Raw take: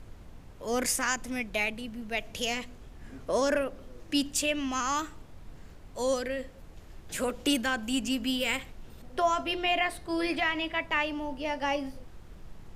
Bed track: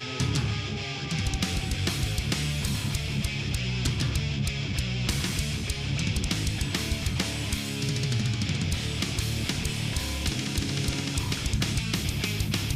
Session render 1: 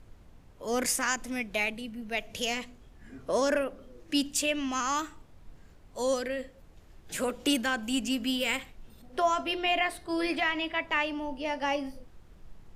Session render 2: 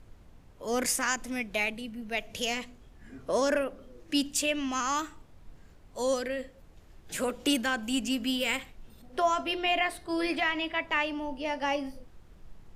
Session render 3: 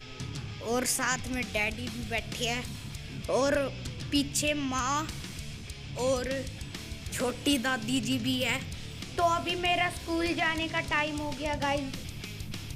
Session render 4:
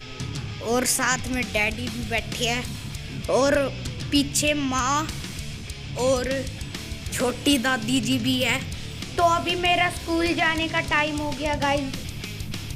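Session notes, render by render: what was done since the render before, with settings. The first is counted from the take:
noise print and reduce 6 dB
no audible change
add bed track -11.5 dB
trim +6.5 dB

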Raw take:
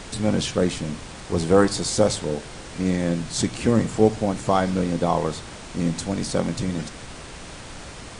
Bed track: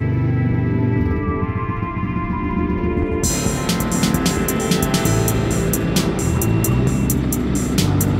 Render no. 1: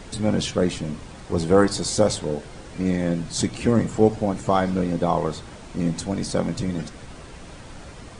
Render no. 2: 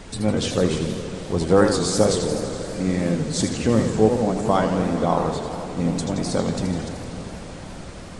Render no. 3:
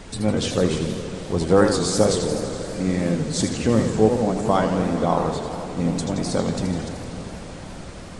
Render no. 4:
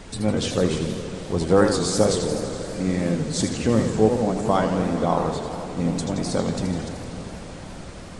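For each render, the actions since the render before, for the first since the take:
noise reduction 7 dB, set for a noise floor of -39 dBFS
echo that smears into a reverb 464 ms, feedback 67%, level -13.5 dB; modulated delay 83 ms, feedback 70%, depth 213 cents, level -7.5 dB
no audible change
trim -1 dB

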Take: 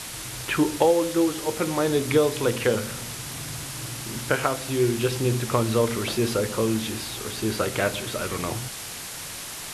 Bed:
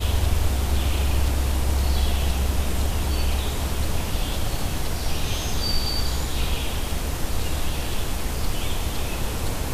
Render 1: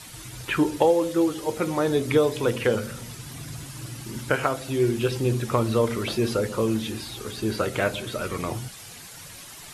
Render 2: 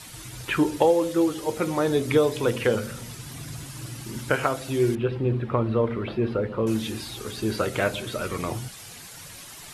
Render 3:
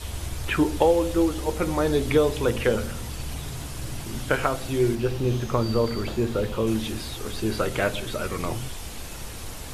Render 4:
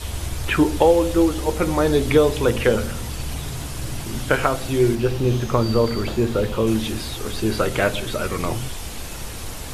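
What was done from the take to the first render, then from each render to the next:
noise reduction 10 dB, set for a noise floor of -36 dBFS
4.95–6.67 s: distance through air 460 m
add bed -11.5 dB
trim +4.5 dB; peak limiter -2 dBFS, peak gain reduction 1 dB

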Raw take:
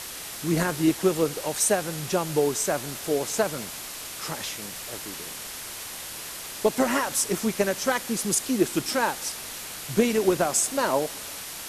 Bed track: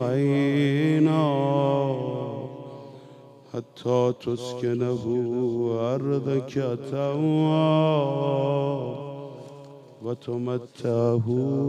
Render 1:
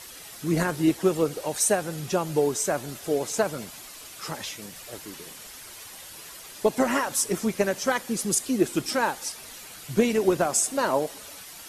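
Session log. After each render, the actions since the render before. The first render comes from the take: noise reduction 9 dB, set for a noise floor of -38 dBFS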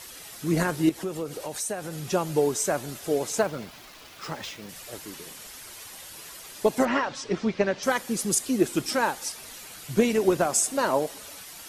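0.89–2.07 s: compression 2.5:1, threshold -31 dBFS; 3.39–4.69 s: median filter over 5 samples; 6.85–7.83 s: low-pass 4.8 kHz 24 dB/octave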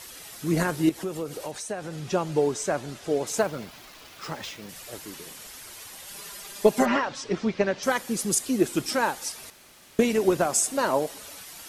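1.51–3.27 s: distance through air 58 m; 6.07–6.96 s: comb 5 ms, depth 82%; 9.50–9.99 s: room tone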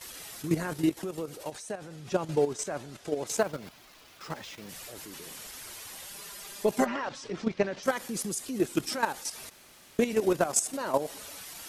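level held to a coarse grid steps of 11 dB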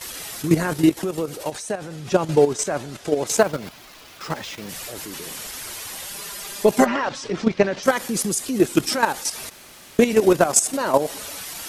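trim +10 dB; peak limiter -3 dBFS, peak gain reduction 2 dB

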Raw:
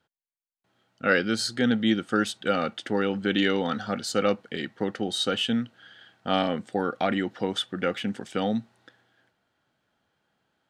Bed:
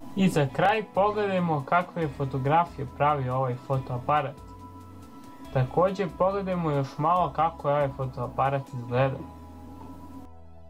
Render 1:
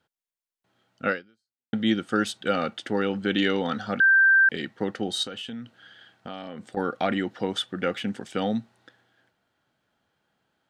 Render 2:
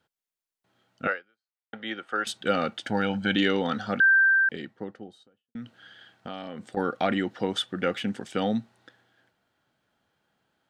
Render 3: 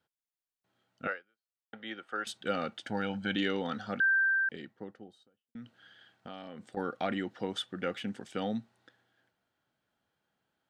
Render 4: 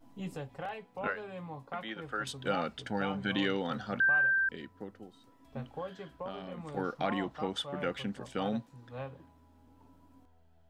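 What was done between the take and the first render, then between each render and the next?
1.08–1.73 s: fade out exponential; 4.00–4.49 s: bleep 1.57 kHz -14 dBFS; 5.23–6.77 s: compression, threshold -33 dBFS
1.07–2.27 s: three-band isolator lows -20 dB, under 490 Hz, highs -16 dB, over 2.8 kHz; 2.84–3.36 s: comb 1.3 ms, depth 66%; 3.91–5.55 s: studio fade out
trim -7.5 dB
add bed -17.5 dB

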